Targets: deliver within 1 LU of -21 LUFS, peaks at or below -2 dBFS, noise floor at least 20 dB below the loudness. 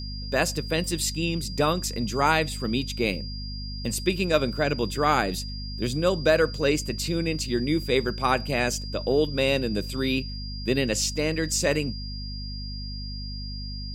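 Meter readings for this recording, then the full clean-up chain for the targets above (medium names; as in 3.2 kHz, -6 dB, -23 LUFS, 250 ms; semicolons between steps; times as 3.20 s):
hum 50 Hz; highest harmonic 250 Hz; hum level -32 dBFS; steady tone 4.8 kHz; tone level -38 dBFS; loudness -26.0 LUFS; peak level -7.5 dBFS; loudness target -21.0 LUFS
-> de-hum 50 Hz, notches 5; band-stop 4.8 kHz, Q 30; trim +5 dB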